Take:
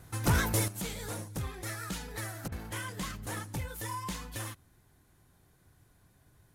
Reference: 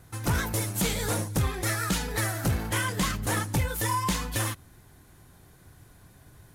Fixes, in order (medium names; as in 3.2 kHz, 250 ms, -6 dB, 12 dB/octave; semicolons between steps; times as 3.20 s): interpolate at 2.48 s, 38 ms; gain correction +10.5 dB, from 0.68 s